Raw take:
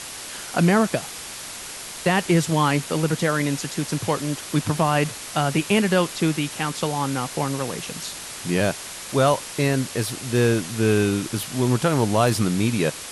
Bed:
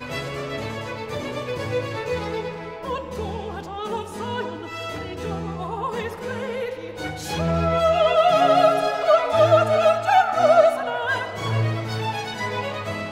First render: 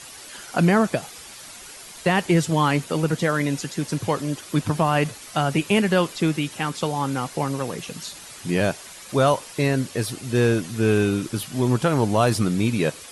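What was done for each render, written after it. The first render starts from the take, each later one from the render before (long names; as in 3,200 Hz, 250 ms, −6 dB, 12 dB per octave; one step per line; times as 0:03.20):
broadband denoise 9 dB, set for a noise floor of −36 dBFS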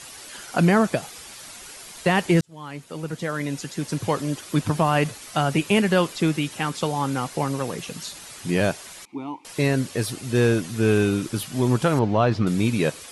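0:02.41–0:04.16: fade in
0:09.05–0:09.45: formant filter u
0:11.99–0:12.47: high-frequency loss of the air 220 metres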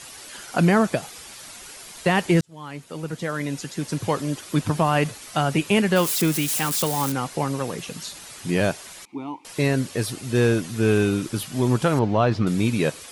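0:05.96–0:07.12: spike at every zero crossing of −19 dBFS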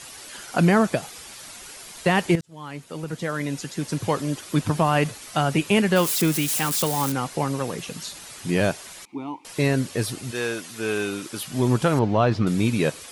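0:02.35–0:03.09: downward compressor 12 to 1, threshold −24 dBFS
0:10.30–0:11.45: high-pass filter 1,100 Hz → 470 Hz 6 dB per octave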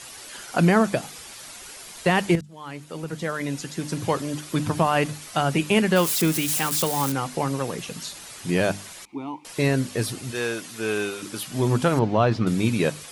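mains-hum notches 50/100/150/200/250/300 Hz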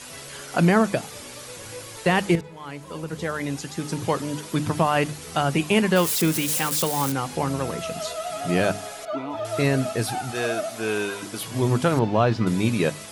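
mix in bed −14.5 dB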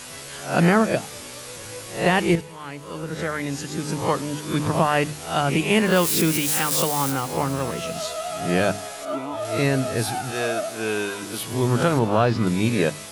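peak hold with a rise ahead of every peak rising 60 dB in 0.41 s
delay with a high-pass on its return 106 ms, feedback 74%, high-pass 5,100 Hz, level −13 dB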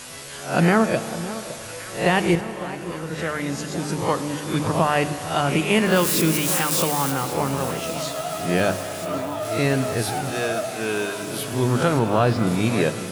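delay that swaps between a low-pass and a high-pass 560 ms, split 1,400 Hz, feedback 80%, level −13 dB
spring reverb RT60 3.6 s, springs 31 ms, chirp 50 ms, DRR 11.5 dB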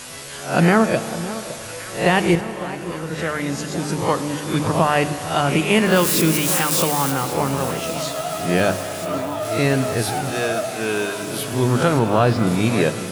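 level +2.5 dB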